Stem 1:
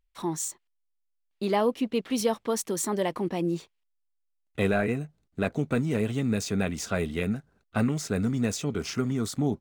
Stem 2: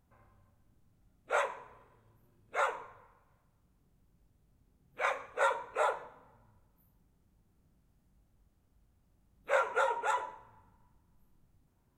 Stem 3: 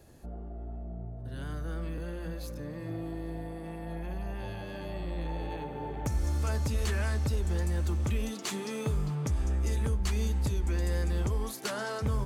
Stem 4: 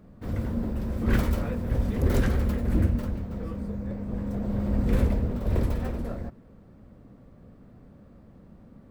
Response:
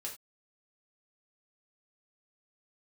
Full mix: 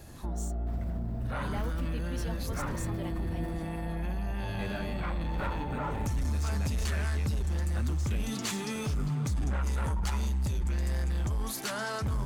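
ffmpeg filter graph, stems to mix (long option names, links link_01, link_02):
-filter_complex "[0:a]volume=-13dB[link_01];[1:a]lowpass=1800,volume=-3.5dB[link_02];[2:a]volume=3dB[link_03];[3:a]adelay=450,volume=-13dB[link_04];[link_02][link_03][link_04]amix=inputs=3:normalize=0,aeval=exprs='0.178*(cos(1*acos(clip(val(0)/0.178,-1,1)))-cos(1*PI/2))+0.0355*(cos(5*acos(clip(val(0)/0.178,-1,1)))-cos(5*PI/2))':channel_layout=same,alimiter=level_in=2dB:limit=-24dB:level=0:latency=1,volume=-2dB,volume=0dB[link_05];[link_01][link_05]amix=inputs=2:normalize=0,equalizer=frequency=450:width=1.4:gain=-6.5"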